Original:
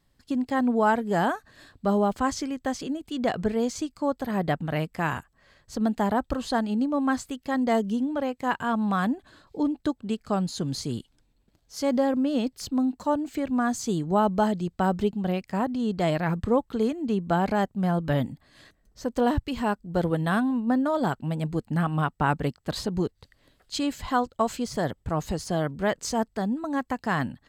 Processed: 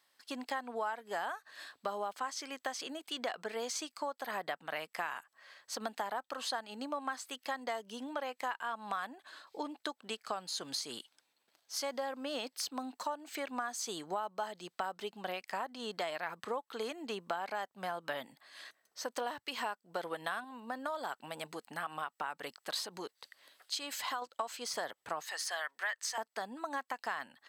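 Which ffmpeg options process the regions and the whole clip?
ffmpeg -i in.wav -filter_complex "[0:a]asettb=1/sr,asplit=3[link_01][link_02][link_03];[link_01]atrim=end=20.444[link_04];[link_02]atrim=start=20.44:end=24.22,asetpts=PTS-STARTPTS,afade=type=in:duration=0.004:curve=qsin,afade=type=out:start_time=3.776:duration=0.004:curve=qsin,highshelf=frequency=6200:gain=3.5,acompressor=threshold=-28dB:ratio=2.5:attack=3.2:release=140:knee=1:detection=peak[link_05];[link_03]atrim=start=24.216[link_06];[link_04][link_05]acrossfade=duration=0.004:curve1=hsin:curve2=qsin[link_07];[link_07][link_06]acrossfade=duration=0.004:curve1=qsin:curve2=hsin,asettb=1/sr,asplit=3[link_08][link_09][link_10];[link_08]atrim=end=25.234[link_11];[link_09]atrim=start=25.23:end=26.18,asetpts=PTS-STARTPTS,afade=type=in:duration=0.004:curve=qsin,afade=type=out:start_time=0.946:duration=0.004:curve=qsin,highpass=980,equalizer=frequency=1800:width=7.2:gain=11.5[link_12];[link_10]atrim=start=26.176[link_13];[link_11][link_12]acrossfade=duration=0.004:curve1=hsin:curve2=qsin[link_14];[link_14][link_13]acrossfade=duration=0.004:curve1=qsin:curve2=hsin,highpass=840,bandreject=frequency=7100:width=12,acompressor=threshold=-38dB:ratio=6,volume=3.5dB" out.wav

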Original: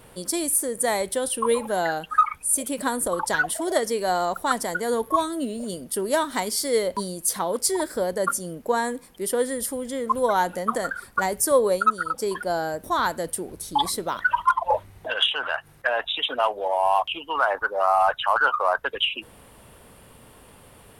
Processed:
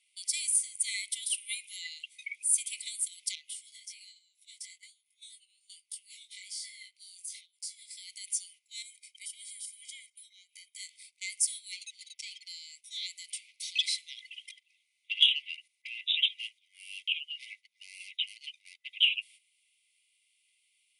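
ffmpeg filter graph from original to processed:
ffmpeg -i in.wav -filter_complex "[0:a]asettb=1/sr,asplit=3[link_01][link_02][link_03];[link_01]atrim=end=3.354[link_04];[link_02]atrim=start=3.35:end=7.91,asetpts=PTS-STARTPTS,afade=type=in:duration=0.004:curve=qsin,afade=type=out:start_time=4.556:duration=0.004:curve=qsin,lowshelf=frequency=190:gain=11.5,acompressor=threshold=-28dB:ratio=12:attack=3.2:release=140:knee=1:detection=peak,flanger=delay=18.5:depth=4.5:speed=1.2[link_05];[link_03]atrim=start=7.906[link_06];[link_04][link_05]acrossfade=duration=0.004:curve1=hsin:curve2=qsin[link_07];[link_07][link_06]acrossfade=duration=0.004:curve1=qsin:curve2=hsin,asettb=1/sr,asplit=3[link_08][link_09][link_10];[link_08]atrim=end=8.824[link_11];[link_09]atrim=start=8.82:end=10.78,asetpts=PTS-STARTPTS,afade=type=in:duration=0.004:curve=qsin,afade=type=out:start_time=1.956:duration=0.004:curve=qsin,highpass=640,aecho=1:1:1.3:0.95,atrim=end_sample=86436,acompressor=threshold=-39dB:ratio=2.5:attack=3.2:release=140:knee=1:detection=peak[link_12];[link_10]atrim=start=10.776[link_13];[link_11][link_12]acrossfade=duration=0.004:curve1=hsin:curve2=qsin[link_14];[link_14][link_13]acrossfade=duration=0.004:curve1=qsin:curve2=hsin,asettb=1/sr,asplit=3[link_15][link_16][link_17];[link_15]atrim=end=11.724[link_18];[link_16]atrim=start=11.72:end=12.48,asetpts=PTS-STARTPTS,afade=type=in:duration=0.004:curve=qsin,afade=type=out:start_time=0.756:duration=0.004:curve=qsin,aecho=1:1:6.9:0.61,atrim=end_sample=33516,adynamicsmooth=sensitivity=8:basefreq=2000[link_19];[link_17]atrim=start=12.476[link_20];[link_18][link_19]acrossfade=duration=0.004:curve1=hsin:curve2=qsin[link_21];[link_21][link_20]acrossfade=duration=0.004:curve1=qsin:curve2=hsin,asettb=1/sr,asplit=3[link_22][link_23][link_24];[link_22]atrim=end=13.304[link_25];[link_23]atrim=start=13.3:end=13.98,asetpts=PTS-STARTPTS,afade=type=in:duration=0.004:curve=qsin,afade=type=out:start_time=0.676:duration=0.004:curve=qsin,asplit=2[link_26][link_27];[link_27]highpass=frequency=720:poles=1,volume=17dB,asoftclip=type=tanh:threshold=-10.5dB[link_28];[link_26][link_28]amix=inputs=2:normalize=0,lowpass=frequency=7300:poles=1,volume=-6dB,aemphasis=mode=reproduction:type=bsi[link_29];[link_24]atrim=start=13.976[link_30];[link_25][link_29]acrossfade=duration=0.004:curve1=hsin:curve2=qsin[link_31];[link_31][link_30]acrossfade=duration=0.004:curve1=qsin:curve2=hsin,afftfilt=real='re*between(b*sr/4096,2000,11000)':imag='im*between(b*sr/4096,2000,11000)':win_size=4096:overlap=0.75,agate=range=-13dB:threshold=-51dB:ratio=16:detection=peak,highshelf=frequency=8500:gain=-6.5" out.wav

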